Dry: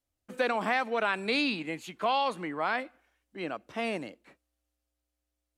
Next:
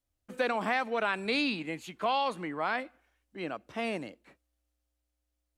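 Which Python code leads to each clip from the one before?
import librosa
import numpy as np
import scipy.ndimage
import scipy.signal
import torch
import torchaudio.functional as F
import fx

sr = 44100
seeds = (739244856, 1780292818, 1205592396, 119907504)

y = fx.low_shelf(x, sr, hz=92.0, db=7.0)
y = y * 10.0 ** (-1.5 / 20.0)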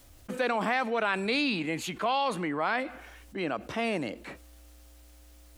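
y = fx.env_flatten(x, sr, amount_pct=50)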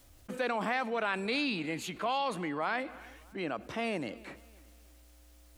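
y = fx.echo_feedback(x, sr, ms=306, feedback_pct=41, wet_db=-22)
y = y * 10.0 ** (-4.0 / 20.0)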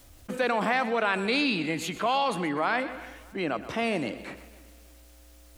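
y = fx.echo_feedback(x, sr, ms=126, feedback_pct=39, wet_db=-14)
y = y * 10.0 ** (6.0 / 20.0)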